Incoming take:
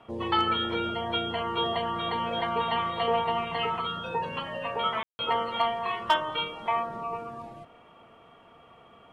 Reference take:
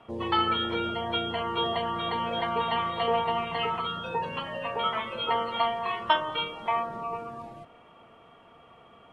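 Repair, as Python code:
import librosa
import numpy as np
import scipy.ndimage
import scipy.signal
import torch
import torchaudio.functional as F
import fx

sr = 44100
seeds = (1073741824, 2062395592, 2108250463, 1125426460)

y = fx.fix_declip(x, sr, threshold_db=-14.5)
y = fx.fix_ambience(y, sr, seeds[0], print_start_s=8.19, print_end_s=8.69, start_s=5.03, end_s=5.19)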